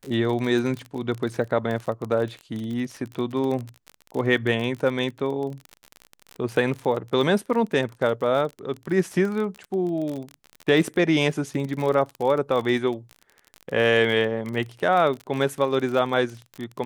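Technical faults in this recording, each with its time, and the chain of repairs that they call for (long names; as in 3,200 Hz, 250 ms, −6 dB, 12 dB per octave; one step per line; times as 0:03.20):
surface crackle 34 per second −28 dBFS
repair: click removal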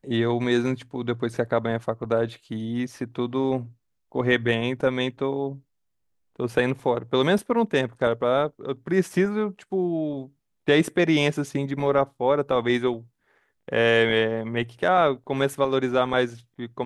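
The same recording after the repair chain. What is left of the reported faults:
none of them is left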